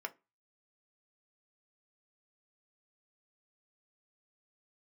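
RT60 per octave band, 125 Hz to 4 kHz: 0.35 s, 0.30 s, 0.25 s, 0.25 s, 0.25 s, 0.20 s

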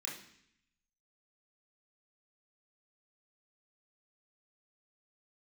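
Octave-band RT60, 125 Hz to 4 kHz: 1.0 s, 0.90 s, 0.65 s, 0.65 s, 0.85 s, 0.80 s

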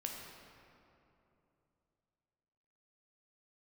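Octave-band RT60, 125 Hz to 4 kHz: 3.6 s, 3.3 s, 3.1 s, 2.7 s, 2.2 s, 1.6 s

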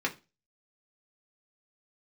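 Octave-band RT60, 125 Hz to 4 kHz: 0.35 s, 0.30 s, 0.30 s, 0.25 s, 0.25 s, 0.30 s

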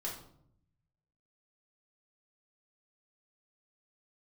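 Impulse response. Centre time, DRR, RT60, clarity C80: 31 ms, -5.0 dB, 0.65 s, 9.5 dB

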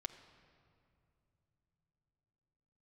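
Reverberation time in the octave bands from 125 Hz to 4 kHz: 5.2 s, 4.6 s, 2.9 s, 2.4 s, 2.0 s, 1.5 s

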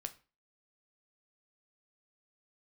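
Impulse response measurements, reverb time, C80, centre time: 0.35 s, 22.0 dB, 5 ms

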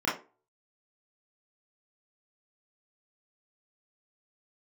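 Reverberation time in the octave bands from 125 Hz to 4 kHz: 0.25 s, 0.35 s, 0.35 s, 0.30 s, 0.25 s, 0.20 s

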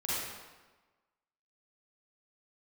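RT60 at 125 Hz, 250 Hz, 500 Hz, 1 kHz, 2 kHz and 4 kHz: 1.1 s, 1.2 s, 1.2 s, 1.3 s, 1.1 s, 0.95 s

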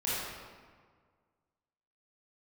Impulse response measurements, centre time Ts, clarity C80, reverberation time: 123 ms, -1.0 dB, 1.7 s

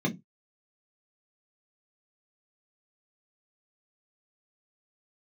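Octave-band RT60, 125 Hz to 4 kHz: 0.25 s, 0.25 s, 0.20 s, 0.15 s, 0.15 s, 0.10 s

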